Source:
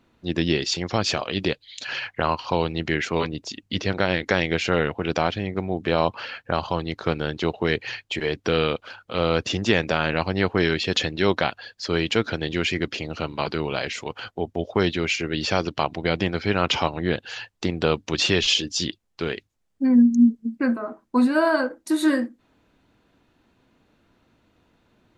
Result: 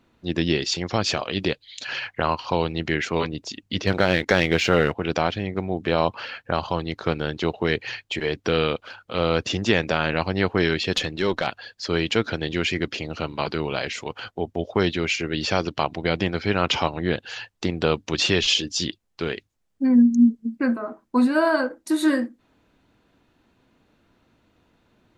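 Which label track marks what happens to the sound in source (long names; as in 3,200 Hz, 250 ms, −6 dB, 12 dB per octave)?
3.870000	4.970000	leveller curve on the samples passes 1
10.970000	11.470000	tube saturation drive 9 dB, bias 0.35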